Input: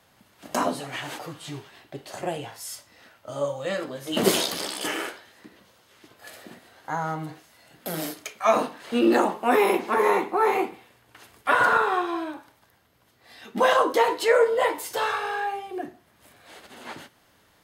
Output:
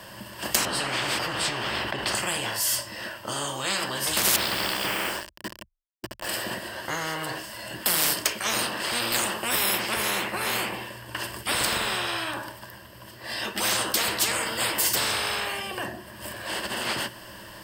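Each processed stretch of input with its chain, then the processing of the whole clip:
0.65–2.15 LPF 1400 Hz 6 dB/oct + fast leveller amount 50%
4.36–6.29 air absorption 390 m + requantised 8-bit, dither none
whole clip: ripple EQ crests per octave 1.3, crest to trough 10 dB; spectral compressor 10:1

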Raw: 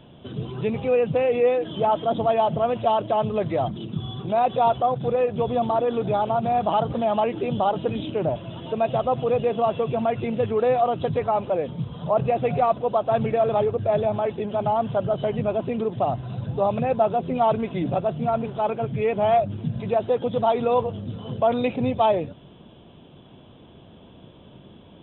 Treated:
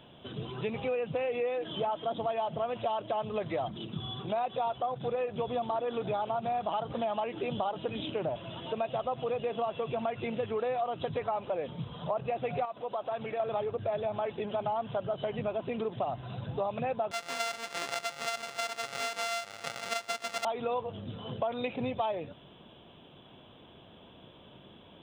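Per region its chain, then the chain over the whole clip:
12.65–13.4 low shelf 180 Hz -11 dB + compressor 2.5:1, threshold -29 dBFS
17.11–20.45 sample sorter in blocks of 64 samples + HPF 1000 Hz 6 dB/oct + decimation joined by straight lines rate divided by 3×
whole clip: low shelf 490 Hz -10 dB; compressor, threshold -29 dBFS

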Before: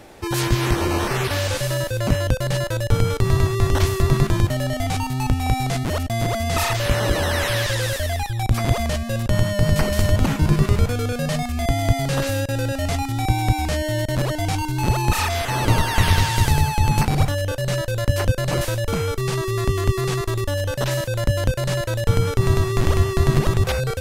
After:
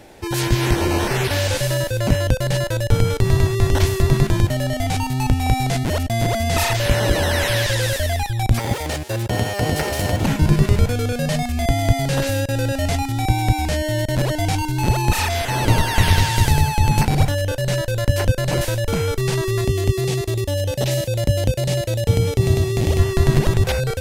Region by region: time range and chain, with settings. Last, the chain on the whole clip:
8.59–10.25 minimum comb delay 2.2 ms + HPF 98 Hz
19.61–22.99 HPF 50 Hz + bell 1500 Hz -12 dB 0.49 oct + notch 1000 Hz, Q 5.4
whole clip: AGC gain up to 3 dB; bell 1200 Hz -8.5 dB 0.24 oct

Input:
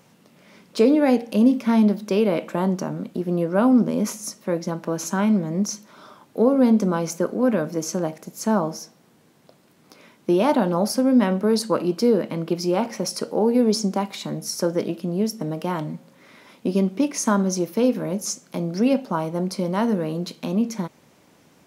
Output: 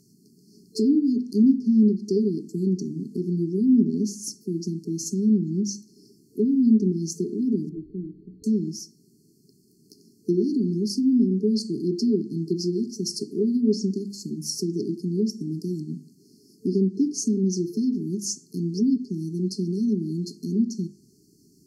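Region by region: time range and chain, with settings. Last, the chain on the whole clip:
7.69–8.44 delta modulation 16 kbps, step -34.5 dBFS + resonator 61 Hz, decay 0.42 s, harmonics odd
whole clip: FFT band-reject 440–4200 Hz; treble ducked by the level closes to 2800 Hz, closed at -15.5 dBFS; notches 50/100/150/200/250/300/350 Hz

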